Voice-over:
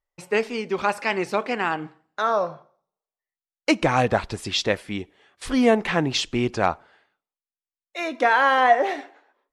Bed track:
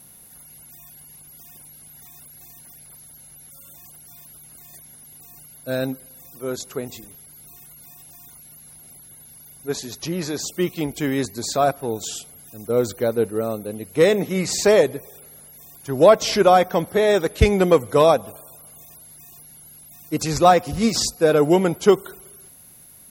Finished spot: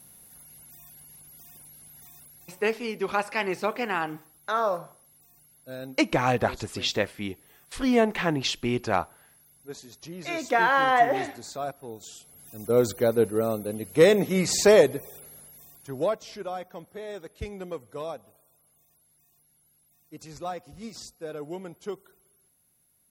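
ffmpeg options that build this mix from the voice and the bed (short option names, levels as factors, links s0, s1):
-filter_complex "[0:a]adelay=2300,volume=0.668[s0];[1:a]volume=2.37,afade=t=out:st=2.09:d=0.72:silence=0.354813,afade=t=in:st=12.19:d=0.45:silence=0.237137,afade=t=out:st=15.12:d=1.11:silence=0.112202[s1];[s0][s1]amix=inputs=2:normalize=0"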